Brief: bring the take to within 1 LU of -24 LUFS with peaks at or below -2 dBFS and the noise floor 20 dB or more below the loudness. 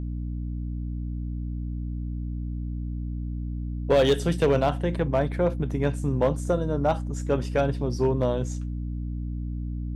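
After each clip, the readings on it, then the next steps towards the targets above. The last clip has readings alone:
clipped 0.3%; flat tops at -13.5 dBFS; hum 60 Hz; harmonics up to 300 Hz; hum level -28 dBFS; loudness -27.5 LUFS; peak -13.5 dBFS; loudness target -24.0 LUFS
-> clip repair -13.5 dBFS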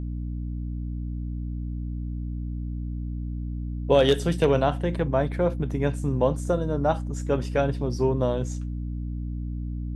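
clipped 0.0%; hum 60 Hz; harmonics up to 300 Hz; hum level -28 dBFS
-> de-hum 60 Hz, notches 5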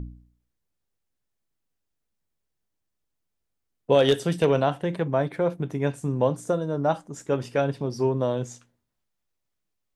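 hum none; loudness -25.0 LUFS; peak -5.5 dBFS; loudness target -24.0 LUFS
-> gain +1 dB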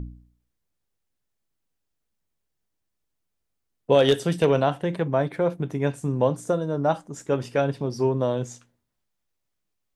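loudness -24.0 LUFS; peak -4.5 dBFS; noise floor -79 dBFS

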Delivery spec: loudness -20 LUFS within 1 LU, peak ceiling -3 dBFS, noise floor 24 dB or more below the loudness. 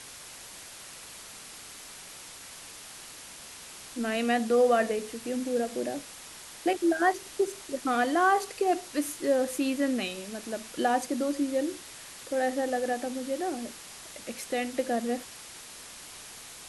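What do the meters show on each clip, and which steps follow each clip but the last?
noise floor -46 dBFS; noise floor target -53 dBFS; loudness -29.0 LUFS; peak -13.0 dBFS; loudness target -20.0 LUFS
-> noise print and reduce 7 dB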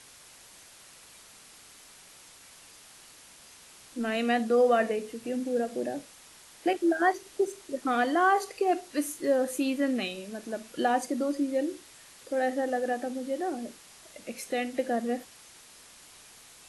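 noise floor -53 dBFS; loudness -29.0 LUFS; peak -13.0 dBFS; loudness target -20.0 LUFS
-> gain +9 dB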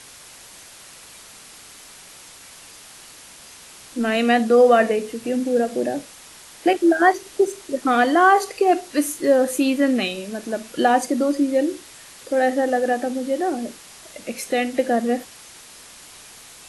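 loudness -20.0 LUFS; peak -4.0 dBFS; noise floor -44 dBFS

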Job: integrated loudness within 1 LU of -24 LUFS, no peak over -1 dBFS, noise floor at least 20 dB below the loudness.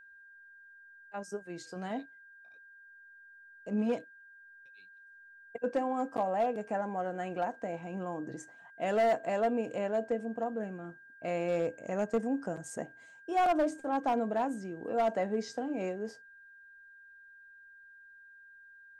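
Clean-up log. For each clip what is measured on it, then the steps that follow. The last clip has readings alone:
clipped 0.7%; flat tops at -23.0 dBFS; steady tone 1600 Hz; tone level -53 dBFS; loudness -34.0 LUFS; peak -23.0 dBFS; loudness target -24.0 LUFS
-> clip repair -23 dBFS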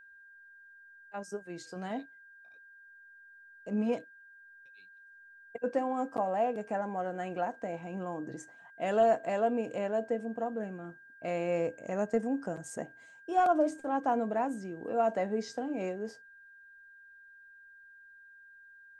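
clipped 0.0%; steady tone 1600 Hz; tone level -53 dBFS
-> notch 1600 Hz, Q 30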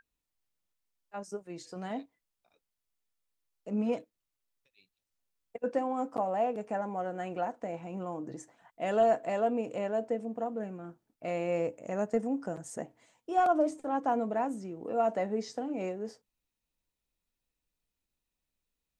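steady tone none; loudness -33.0 LUFS; peak -15.5 dBFS; loudness target -24.0 LUFS
-> gain +9 dB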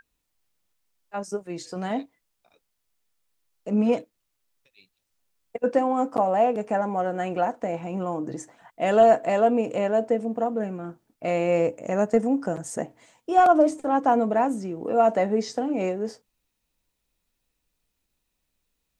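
loudness -24.0 LUFS; peak -6.5 dBFS; noise floor -78 dBFS

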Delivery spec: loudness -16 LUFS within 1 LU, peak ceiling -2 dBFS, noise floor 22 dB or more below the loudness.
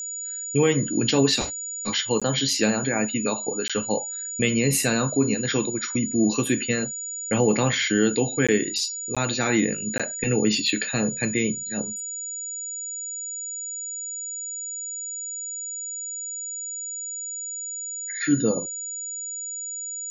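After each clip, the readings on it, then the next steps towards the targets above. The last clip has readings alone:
dropouts 5; longest dropout 16 ms; steady tone 6900 Hz; tone level -30 dBFS; loudness -24.5 LUFS; peak -7.5 dBFS; loudness target -16.0 LUFS
-> interpolate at 2.2/3.68/8.47/9.15/9.98, 16 ms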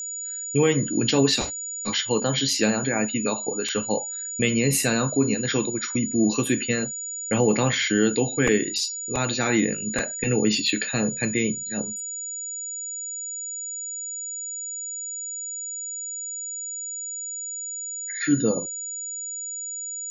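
dropouts 0; steady tone 6900 Hz; tone level -30 dBFS
-> notch 6900 Hz, Q 30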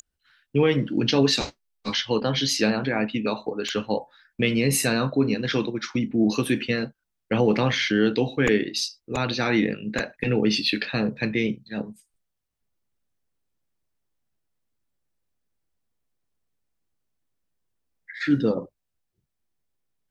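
steady tone none; loudness -24.0 LUFS; peak -7.5 dBFS; loudness target -16.0 LUFS
-> gain +8 dB; limiter -2 dBFS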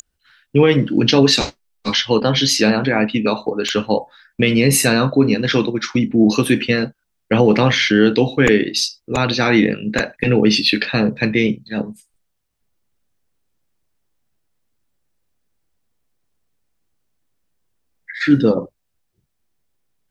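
loudness -16.0 LUFS; peak -2.0 dBFS; noise floor -72 dBFS

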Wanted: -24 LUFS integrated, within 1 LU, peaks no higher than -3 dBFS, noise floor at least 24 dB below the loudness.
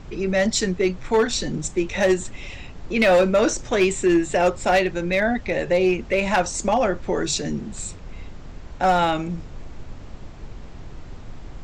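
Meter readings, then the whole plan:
clipped 0.7%; flat tops at -11.5 dBFS; noise floor -39 dBFS; noise floor target -46 dBFS; loudness -21.5 LUFS; peak -11.5 dBFS; loudness target -24.0 LUFS
-> clip repair -11.5 dBFS; noise print and reduce 7 dB; gain -2.5 dB

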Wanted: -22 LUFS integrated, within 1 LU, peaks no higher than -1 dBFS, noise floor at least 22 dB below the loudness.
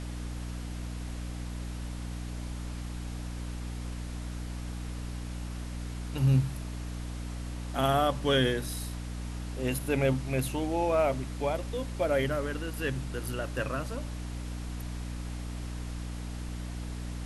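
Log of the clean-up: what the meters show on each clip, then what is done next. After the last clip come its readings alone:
hum 60 Hz; harmonics up to 300 Hz; hum level -35 dBFS; noise floor -38 dBFS; noise floor target -55 dBFS; loudness -33.0 LUFS; peak -13.0 dBFS; loudness target -22.0 LUFS
-> de-hum 60 Hz, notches 5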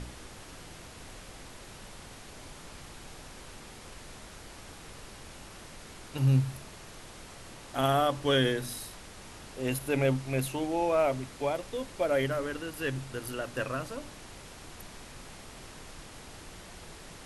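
hum none; noise floor -48 dBFS; noise floor target -53 dBFS
-> noise print and reduce 6 dB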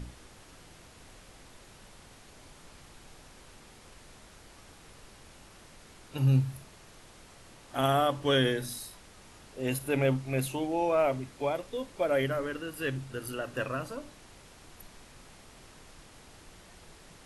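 noise floor -54 dBFS; loudness -30.5 LUFS; peak -13.5 dBFS; loudness target -22.0 LUFS
-> gain +8.5 dB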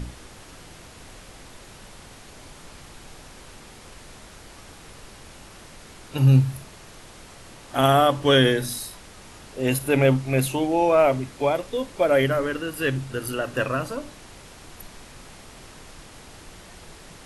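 loudness -22.0 LUFS; peak -5.0 dBFS; noise floor -46 dBFS

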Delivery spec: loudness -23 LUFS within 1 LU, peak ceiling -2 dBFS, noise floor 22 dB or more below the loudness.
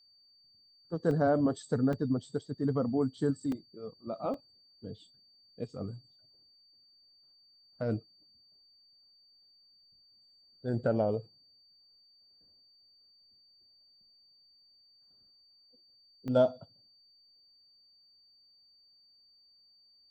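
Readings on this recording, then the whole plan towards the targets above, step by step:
dropouts 5; longest dropout 2.5 ms; steady tone 4600 Hz; tone level -61 dBFS; loudness -32.5 LUFS; peak -15.0 dBFS; loudness target -23.0 LUFS
-> interpolate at 1.11/1.93/3.52/4.34/16.28, 2.5 ms; notch 4600 Hz, Q 30; gain +9.5 dB

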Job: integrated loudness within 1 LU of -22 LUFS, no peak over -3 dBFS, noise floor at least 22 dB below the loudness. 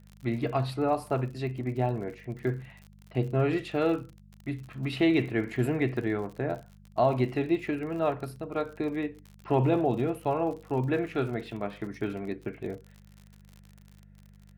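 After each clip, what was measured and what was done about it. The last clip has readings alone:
ticks 56/s; hum 50 Hz; harmonics up to 200 Hz; hum level -53 dBFS; loudness -30.0 LUFS; peak -12.5 dBFS; loudness target -22.0 LUFS
-> de-click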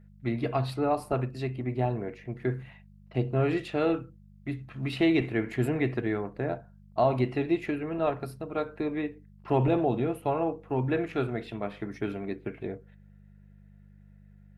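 ticks 0/s; hum 50 Hz; harmonics up to 200 Hz; hum level -53 dBFS
-> de-hum 50 Hz, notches 4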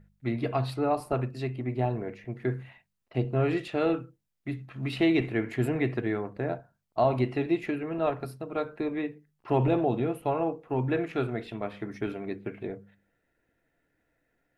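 hum none; loudness -30.0 LUFS; peak -12.5 dBFS; loudness target -22.0 LUFS
-> gain +8 dB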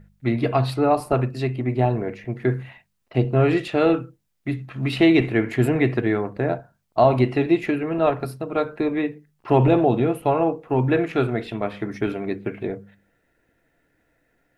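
loudness -22.0 LUFS; peak -4.5 dBFS; noise floor -69 dBFS

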